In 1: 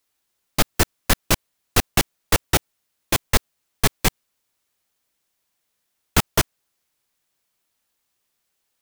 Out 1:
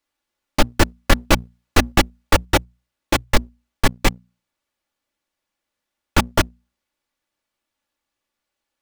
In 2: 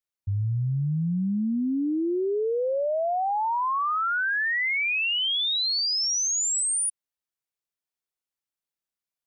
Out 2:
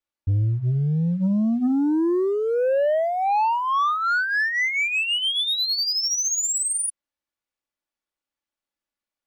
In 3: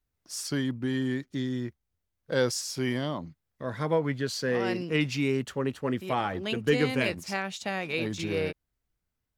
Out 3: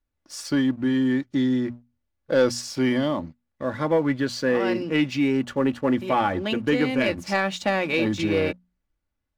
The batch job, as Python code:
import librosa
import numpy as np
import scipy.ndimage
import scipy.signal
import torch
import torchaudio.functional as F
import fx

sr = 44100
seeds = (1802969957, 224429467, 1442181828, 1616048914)

p1 = np.clip(x, -10.0 ** (-9.5 / 20.0), 10.0 ** (-9.5 / 20.0))
p2 = x + (p1 * librosa.db_to_amplitude(-11.5))
p3 = fx.lowpass(p2, sr, hz=2700.0, slope=6)
p4 = fx.hum_notches(p3, sr, base_hz=60, count=4)
p5 = p4 + 0.44 * np.pad(p4, (int(3.5 * sr / 1000.0), 0))[:len(p4)]
p6 = fx.rider(p5, sr, range_db=4, speed_s=0.5)
p7 = fx.leveller(p6, sr, passes=1)
y = p7 * librosa.db_to_amplitude(1.0)